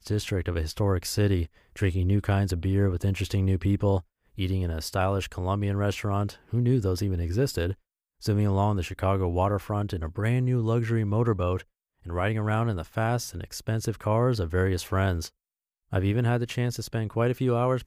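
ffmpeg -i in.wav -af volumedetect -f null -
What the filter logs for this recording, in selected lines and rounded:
mean_volume: -26.3 dB
max_volume: -12.3 dB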